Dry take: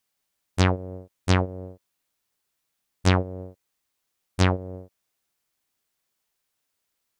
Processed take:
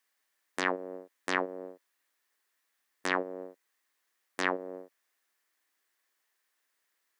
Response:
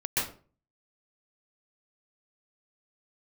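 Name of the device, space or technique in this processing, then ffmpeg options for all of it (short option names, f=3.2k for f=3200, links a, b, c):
laptop speaker: -af "highpass=f=270:w=0.5412,highpass=f=270:w=1.3066,equalizer=f=1.1k:t=o:w=0.38:g=4,equalizer=f=1.8k:t=o:w=0.48:g=11,alimiter=limit=-11dB:level=0:latency=1:release=99,volume=-1.5dB"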